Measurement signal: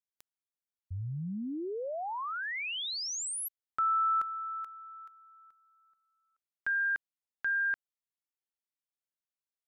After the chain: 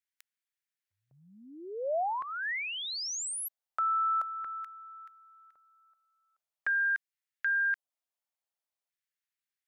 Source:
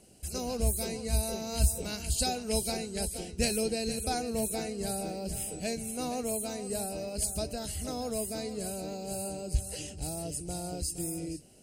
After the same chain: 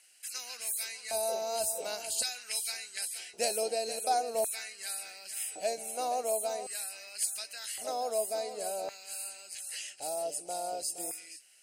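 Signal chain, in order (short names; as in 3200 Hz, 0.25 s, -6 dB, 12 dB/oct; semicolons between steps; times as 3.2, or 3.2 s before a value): LFO high-pass square 0.45 Hz 650–1800 Hz; dynamic EQ 2300 Hz, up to -5 dB, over -40 dBFS, Q 0.79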